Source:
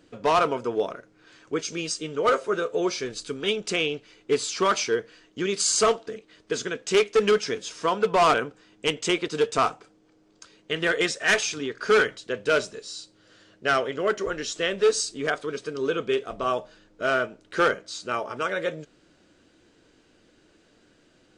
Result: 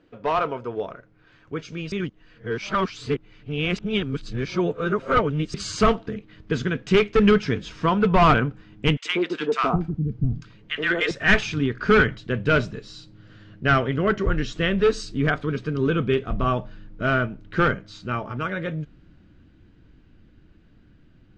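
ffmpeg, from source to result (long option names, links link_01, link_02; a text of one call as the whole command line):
ffmpeg -i in.wav -filter_complex "[0:a]asettb=1/sr,asplit=3[link_01][link_02][link_03];[link_01]atrim=end=8.974[link_04];[link_02]atrim=start=8.97:end=11.11,asetpts=PTS-STARTPTS,afade=type=in:duration=0.004:curve=qsin,afade=type=out:start_time=2.136:duration=0.004:curve=qsin,acrossover=split=260|1000[link_05][link_06][link_07];[link_06]adelay=80[link_08];[link_05]adelay=660[link_09];[link_09][link_08][link_07]amix=inputs=3:normalize=0,atrim=end_sample=94374[link_10];[link_03]atrim=start=11.106[link_11];[link_04][link_10]acrossfade=duration=0.004:curve1=hsin:curve2=qsin[link_12];[link_12][link_11]acrossfade=duration=0.004:curve1=qsin:curve2=hsin,asplit=3[link_13][link_14][link_15];[link_13]atrim=end=1.922[link_16];[link_14]atrim=start=1.918:end=5.542,asetpts=PTS-STARTPTS,areverse[link_17];[link_15]atrim=start=5.538[link_18];[link_16][link_17]acrossfade=duration=0.004:curve1=hsin:curve2=hsin[link_19];[link_19][link_18]acrossfade=duration=0.004:curve1=hsin:curve2=hsin,lowpass=2800,dynaudnorm=framelen=370:gausssize=21:maxgain=6dB,asubboost=boost=10.5:cutoff=150,volume=-1.5dB" out.wav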